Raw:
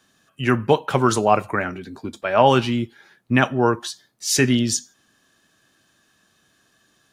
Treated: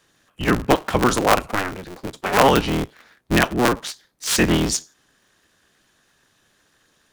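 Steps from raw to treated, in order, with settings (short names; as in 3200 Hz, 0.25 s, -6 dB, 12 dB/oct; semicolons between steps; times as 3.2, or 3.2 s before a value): cycle switcher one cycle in 3, inverted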